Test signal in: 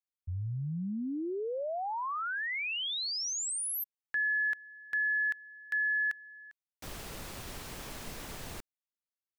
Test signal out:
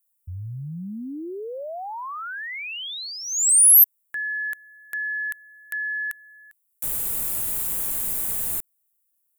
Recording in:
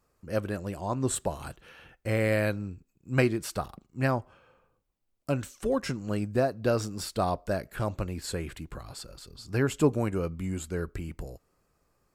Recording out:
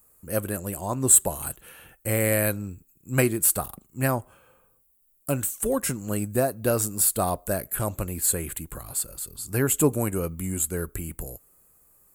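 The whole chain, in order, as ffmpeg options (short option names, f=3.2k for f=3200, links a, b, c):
-af "aexciter=amount=5.2:drive=9.8:freq=7.7k,volume=2dB"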